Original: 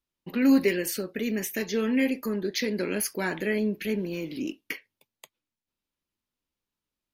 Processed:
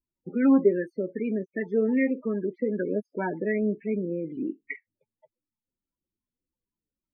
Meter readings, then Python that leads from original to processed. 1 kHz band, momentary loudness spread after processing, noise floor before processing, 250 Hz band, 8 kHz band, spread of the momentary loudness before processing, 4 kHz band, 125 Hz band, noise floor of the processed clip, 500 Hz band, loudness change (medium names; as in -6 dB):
+1.0 dB, 12 LU, under -85 dBFS, +0.5 dB, under -40 dB, 12 LU, under -35 dB, +0.5 dB, under -85 dBFS, +2.5 dB, +0.5 dB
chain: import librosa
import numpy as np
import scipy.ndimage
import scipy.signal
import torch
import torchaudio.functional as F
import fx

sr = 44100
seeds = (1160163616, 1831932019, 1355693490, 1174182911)

y = fx.spec_topn(x, sr, count=16)
y = fx.high_shelf_res(y, sr, hz=2800.0, db=-6.5, q=1.5)
y = fx.filter_lfo_lowpass(y, sr, shape='sine', hz=2.6, low_hz=540.0, high_hz=1600.0, q=1.9)